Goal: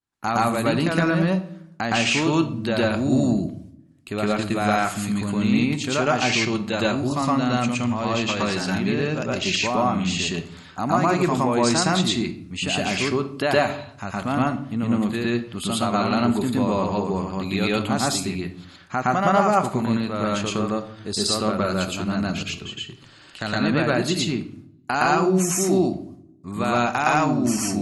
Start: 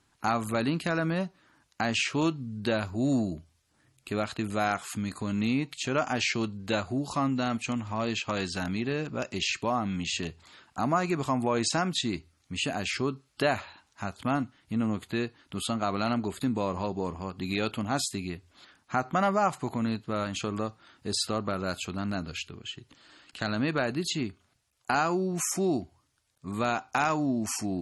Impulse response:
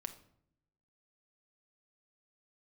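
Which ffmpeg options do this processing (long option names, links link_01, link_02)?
-filter_complex "[0:a]agate=range=-33dB:threshold=-55dB:ratio=3:detection=peak,asplit=2[link_01][link_02];[1:a]atrim=start_sample=2205,adelay=115[link_03];[link_02][link_03]afir=irnorm=-1:irlink=0,volume=6dB[link_04];[link_01][link_04]amix=inputs=2:normalize=0,volume=2.5dB"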